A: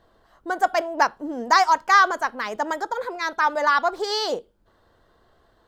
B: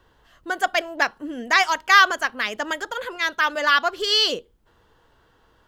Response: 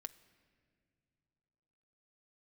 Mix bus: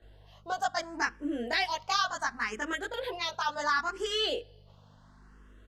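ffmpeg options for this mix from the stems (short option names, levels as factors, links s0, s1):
-filter_complex "[0:a]acrossover=split=180|3000[s0][s1][s2];[s1]acompressor=threshold=0.0316:ratio=3[s3];[s0][s3][s2]amix=inputs=3:normalize=0,volume=0.596,asplit=2[s4][s5];[s5]volume=0.501[s6];[1:a]aemphasis=mode=production:type=50kf,acompressor=threshold=0.0447:ratio=2,aeval=exprs='val(0)+0.00398*(sin(2*PI*50*n/s)+sin(2*PI*2*50*n/s)/2+sin(2*PI*3*50*n/s)/3+sin(2*PI*4*50*n/s)/4+sin(2*PI*5*50*n/s)/5)':c=same,adelay=20,volume=0.501,asplit=2[s7][s8];[s8]volume=0.531[s9];[2:a]atrim=start_sample=2205[s10];[s6][s9]amix=inputs=2:normalize=0[s11];[s11][s10]afir=irnorm=-1:irlink=0[s12];[s4][s7][s12]amix=inputs=3:normalize=0,lowpass=6800,asplit=2[s13][s14];[s14]afreqshift=0.7[s15];[s13][s15]amix=inputs=2:normalize=1"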